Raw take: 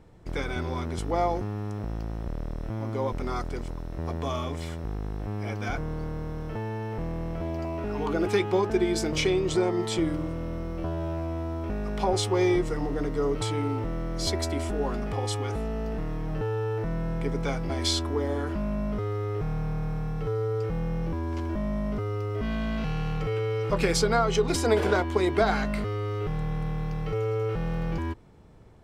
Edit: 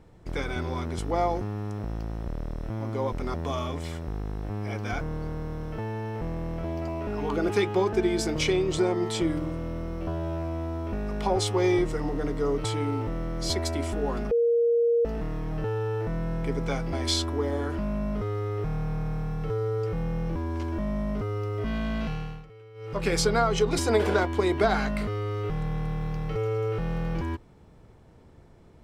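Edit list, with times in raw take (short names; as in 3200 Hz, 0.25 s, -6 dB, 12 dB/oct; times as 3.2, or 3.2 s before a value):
3.34–4.11 cut
15.08–15.82 bleep 469 Hz -19 dBFS
22.8–23.94 dip -20.5 dB, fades 0.43 s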